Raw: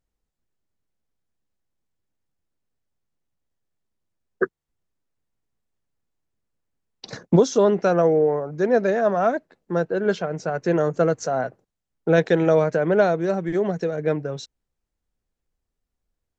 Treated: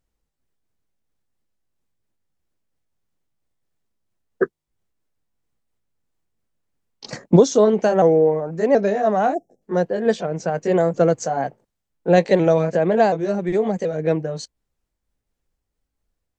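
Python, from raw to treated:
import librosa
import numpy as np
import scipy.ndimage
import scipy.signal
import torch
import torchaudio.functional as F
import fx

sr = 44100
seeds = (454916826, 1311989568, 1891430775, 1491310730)

y = fx.pitch_ramps(x, sr, semitones=2.0, every_ms=729)
y = fx.dynamic_eq(y, sr, hz=1500.0, q=1.6, threshold_db=-41.0, ratio=4.0, max_db=-6)
y = fx.spec_box(y, sr, start_s=9.34, length_s=0.28, low_hz=830.0, high_hz=5200.0, gain_db=-29)
y = y * 10.0 ** (4.0 / 20.0)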